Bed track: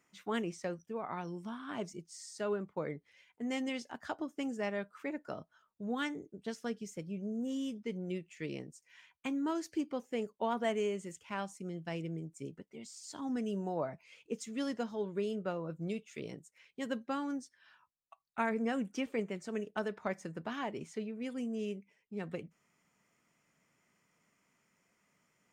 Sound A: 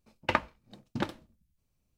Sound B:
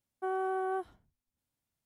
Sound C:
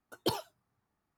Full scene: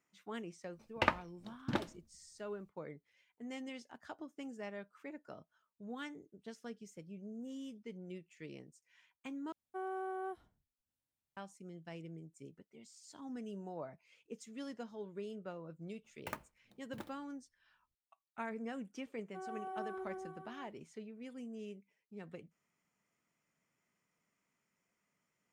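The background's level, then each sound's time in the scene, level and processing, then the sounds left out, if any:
bed track -9 dB
0.73 s: add A -3.5 dB
9.52 s: replace with B -8 dB
15.98 s: add A -16.5 dB + sampling jitter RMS 0.028 ms
19.12 s: add B -13 dB + reverse bouncing-ball echo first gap 110 ms, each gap 1.15×, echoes 5, each echo -2 dB
not used: C

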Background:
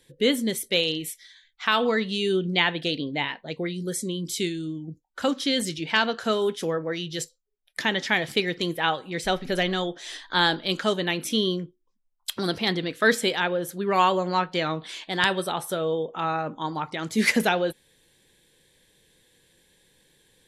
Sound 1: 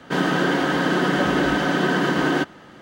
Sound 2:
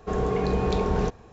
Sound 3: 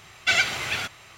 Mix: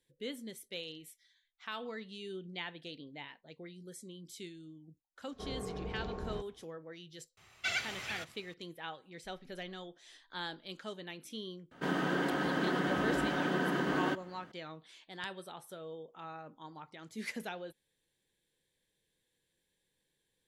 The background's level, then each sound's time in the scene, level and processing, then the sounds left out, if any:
background -19.5 dB
5.32 s: add 2 -16.5 dB + treble shelf 3.8 kHz -9.5 dB
7.37 s: add 3 -13.5 dB
11.71 s: add 1 -12 dB + peaking EQ 5.2 kHz -3.5 dB 1.4 oct

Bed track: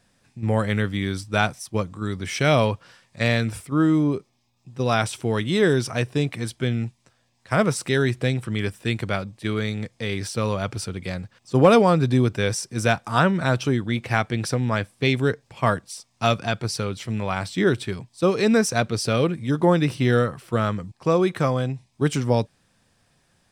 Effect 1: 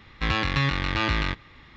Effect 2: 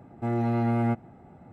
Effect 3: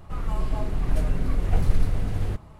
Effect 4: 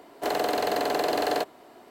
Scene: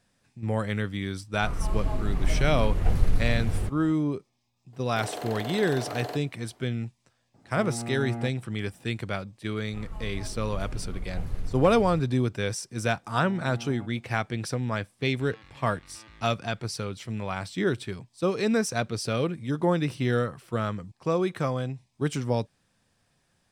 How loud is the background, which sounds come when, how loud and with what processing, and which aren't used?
bed track -6 dB
1.33 s: add 3 -1.5 dB
4.73 s: add 4 -10 dB
7.34 s: add 2 -9.5 dB
9.64 s: add 3 -11.5 dB
12.92 s: add 2 -17.5 dB
14.99 s: add 1 -18 dB + compression 3:1, threshold -33 dBFS

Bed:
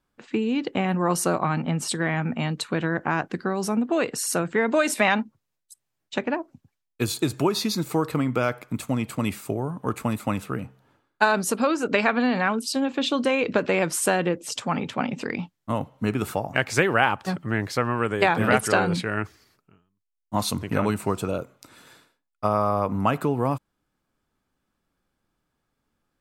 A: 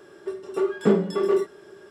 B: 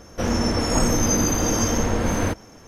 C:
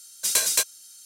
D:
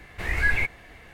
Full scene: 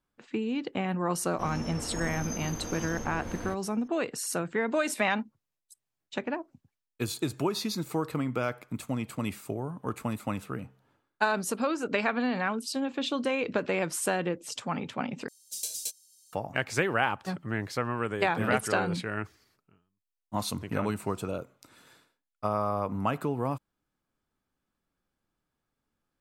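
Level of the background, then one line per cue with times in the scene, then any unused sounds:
bed -6.5 dB
1.21 s: add B -16.5 dB
15.28 s: replace with C -17.5 dB + FFT filter 270 Hz 0 dB, 570 Hz -3 dB, 1.4 kHz -21 dB, 2.9 kHz -1 dB, 5 kHz +5 dB
not used: A, D

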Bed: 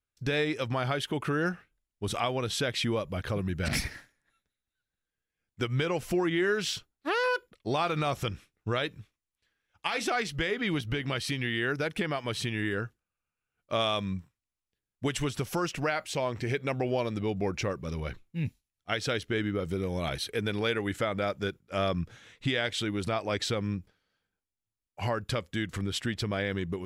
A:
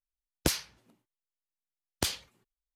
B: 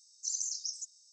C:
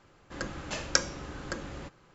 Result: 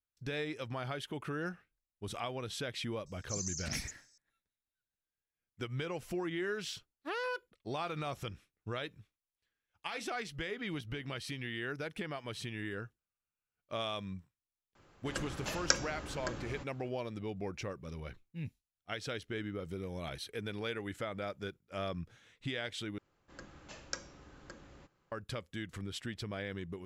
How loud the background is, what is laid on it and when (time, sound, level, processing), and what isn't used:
bed -9.5 dB
3.06 s: add B -5 dB
14.75 s: add C -3.5 dB
22.98 s: replace with C -15 dB
not used: A

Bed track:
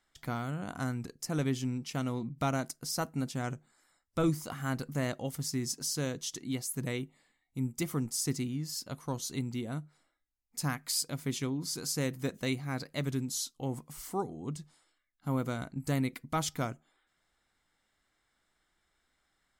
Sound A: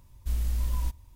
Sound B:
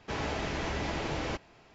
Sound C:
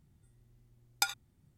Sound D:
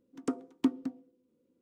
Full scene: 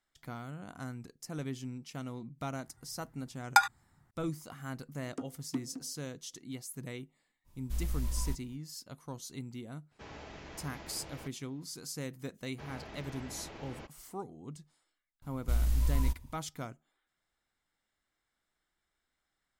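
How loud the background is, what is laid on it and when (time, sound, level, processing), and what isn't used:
bed track -7.5 dB
2.54 s: add C -1 dB + high-order bell 1.2 kHz +14 dB
4.90 s: add D -8.5 dB
7.44 s: add A -4 dB, fades 0.05 s + peaking EQ 83 Hz -7 dB
9.91 s: add B -14.5 dB
12.50 s: add B -13.5 dB + treble shelf 5.3 kHz -5 dB
15.22 s: add A -0.5 dB

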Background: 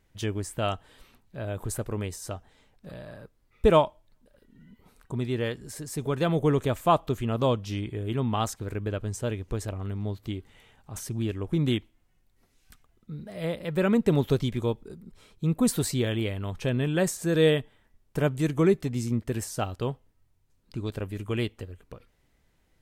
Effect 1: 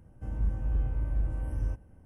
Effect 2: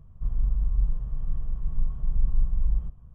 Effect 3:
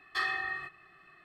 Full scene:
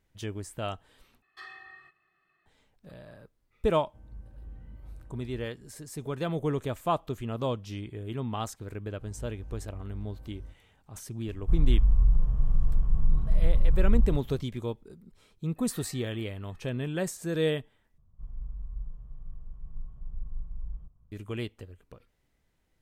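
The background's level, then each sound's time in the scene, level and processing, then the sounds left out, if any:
background -6 dB
1.22 s: replace with 3 -14.5 dB
3.72 s: add 1 -16.5 dB
8.78 s: add 1 -14 dB
11.27 s: add 2 -12.5 dB + loudness maximiser +18 dB
15.56 s: add 3 -9.5 dB + compression 2:1, threshold -55 dBFS
17.98 s: replace with 2 -13.5 dB

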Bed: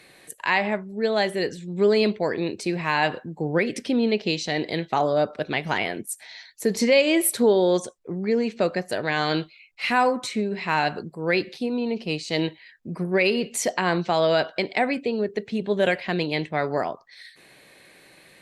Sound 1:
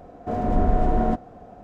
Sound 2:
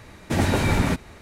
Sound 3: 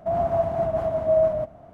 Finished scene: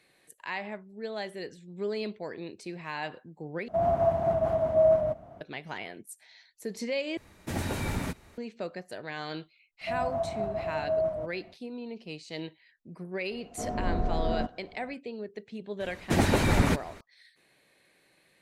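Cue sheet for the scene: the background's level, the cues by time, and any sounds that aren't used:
bed -13.5 dB
3.68 s: replace with 3 -2 dB + high-pass 42 Hz
7.17 s: replace with 2 -11 dB + treble shelf 9.6 kHz +9 dB
9.81 s: add 3 -8.5 dB
13.31 s: add 1 -9 dB
15.80 s: add 2 -7.5 dB + harmonic-percussive split percussive +8 dB

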